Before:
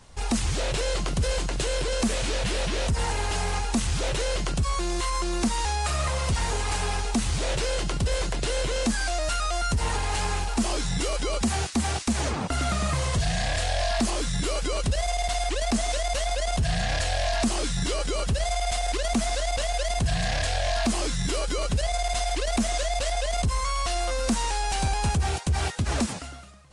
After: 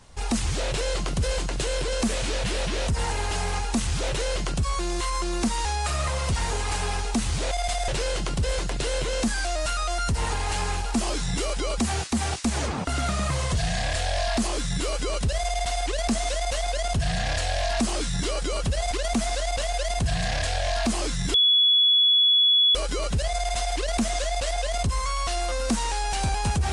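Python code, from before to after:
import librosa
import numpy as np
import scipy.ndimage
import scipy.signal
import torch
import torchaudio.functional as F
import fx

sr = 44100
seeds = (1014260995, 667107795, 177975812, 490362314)

y = fx.edit(x, sr, fx.move(start_s=18.54, length_s=0.37, to_s=7.51),
    fx.insert_tone(at_s=21.34, length_s=1.41, hz=3390.0, db=-15.5), tone=tone)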